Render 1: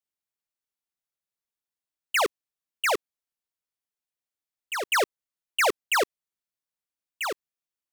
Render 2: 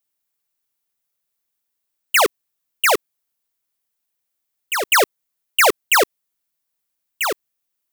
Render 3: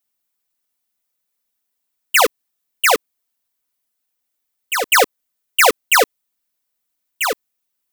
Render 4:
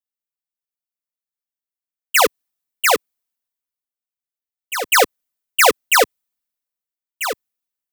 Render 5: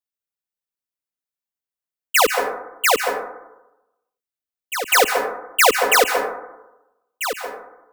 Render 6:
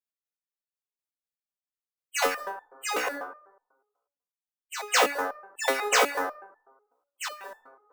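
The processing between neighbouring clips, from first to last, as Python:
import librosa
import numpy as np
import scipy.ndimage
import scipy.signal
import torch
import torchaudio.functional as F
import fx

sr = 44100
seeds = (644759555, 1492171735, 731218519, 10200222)

y1 = fx.high_shelf(x, sr, hz=11000.0, db=11.0)
y1 = y1 * librosa.db_to_amplitude(8.0)
y2 = y1 + 0.96 * np.pad(y1, (int(4.0 * sr / 1000.0), 0))[:len(y1)]
y2 = y2 * librosa.db_to_amplitude(-1.0)
y3 = fx.band_widen(y2, sr, depth_pct=40)
y3 = y3 * librosa.db_to_amplitude(-2.0)
y4 = fx.rev_plate(y3, sr, seeds[0], rt60_s=0.96, hf_ratio=0.3, predelay_ms=120, drr_db=5.0)
y4 = y4 * librosa.db_to_amplitude(-1.5)
y5 = fx.spec_quant(y4, sr, step_db=30)
y5 = fx.resonator_held(y5, sr, hz=8.1, low_hz=63.0, high_hz=880.0)
y5 = y5 * librosa.db_to_amplitude(2.0)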